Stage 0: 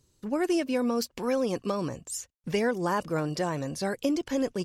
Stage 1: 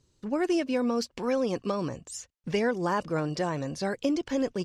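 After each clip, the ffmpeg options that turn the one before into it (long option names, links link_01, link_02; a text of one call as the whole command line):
ffmpeg -i in.wav -af "lowpass=6800" out.wav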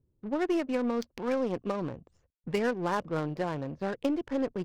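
ffmpeg -i in.wav -af "aeval=exprs='0.178*(cos(1*acos(clip(val(0)/0.178,-1,1)))-cos(1*PI/2))+0.0178*(cos(3*acos(clip(val(0)/0.178,-1,1)))-cos(3*PI/2))+0.00224*(cos(8*acos(clip(val(0)/0.178,-1,1)))-cos(8*PI/2))':channel_layout=same,adynamicsmooth=sensitivity=6.5:basefreq=570" out.wav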